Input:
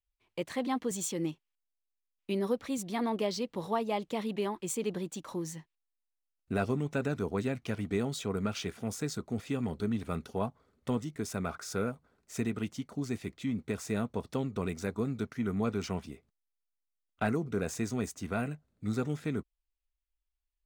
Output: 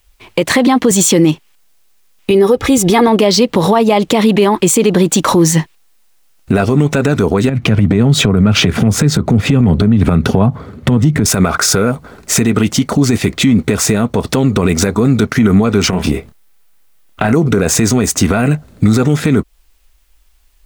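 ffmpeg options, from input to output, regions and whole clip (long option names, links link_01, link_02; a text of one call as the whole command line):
ffmpeg -i in.wav -filter_complex "[0:a]asettb=1/sr,asplit=3[link_01][link_02][link_03];[link_01]atrim=end=2.304[link_04];[link_02]atrim=start=2.3:end=3.08,asetpts=PTS-STARTPTS,afade=type=in:duration=0.004:curve=qsin,afade=type=out:start_time=0.776:duration=0.004:curve=qsin,equalizer=frequency=70:width=0.42:gain=9.5,bandreject=frequency=4300:width=12,aecho=1:1:2.4:0.58,atrim=end_sample=34398[link_05];[link_03]atrim=start=3.076[link_06];[link_04][link_05]acrossfade=duration=0.004:curve1=hsin:curve2=qsin[link_07];[link_07][link_06]acrossfade=duration=0.004:curve1=qsin:curve2=hsin,asettb=1/sr,asplit=3[link_08][link_09][link_10];[link_08]atrim=end=7.494[link_11];[link_09]atrim=start=7.49:end=11.26,asetpts=PTS-STARTPTS,afade=type=in:duration=0.004:curve=qsin,afade=type=out:start_time=3.766:duration=0.004:curve=qsin,highpass=frequency=81:width=0.5412,highpass=frequency=81:width=1.3066,bass=frequency=250:gain=11,treble=frequency=4000:gain=-8,acompressor=threshold=-37dB:ratio=16:attack=3.2:release=140:knee=1:detection=peak[link_12];[link_10]atrim=start=11.256[link_13];[link_11][link_12]acrossfade=duration=0.004:curve1=hsin:curve2=qsin[link_14];[link_14][link_13]acrossfade=duration=0.004:curve1=qsin:curve2=hsin,asettb=1/sr,asplit=3[link_15][link_16][link_17];[link_15]atrim=end=15.904[link_18];[link_16]atrim=start=15.9:end=17.33,asetpts=PTS-STARTPTS,afade=type=in:duration=0.004:curve=qsin,afade=type=out:start_time=1.426:duration=0.004:curve=qsin,equalizer=frequency=5900:width_type=o:width=1.5:gain=-4,acompressor=threshold=-42dB:ratio=8:attack=3.2:release=140:knee=1:detection=peak,asplit=2[link_19][link_20];[link_20]adelay=27,volume=-7dB[link_21];[link_19][link_21]amix=inputs=2:normalize=0,atrim=end_sample=63063[link_22];[link_17]atrim=start=17.326[link_23];[link_18][link_22]acrossfade=duration=0.004:curve1=hsin:curve2=qsin[link_24];[link_24][link_23]acrossfade=duration=0.004:curve1=qsin:curve2=hsin,acompressor=threshold=-38dB:ratio=4,alimiter=level_in=35.5dB:limit=-1dB:release=50:level=0:latency=1,volume=-1dB" out.wav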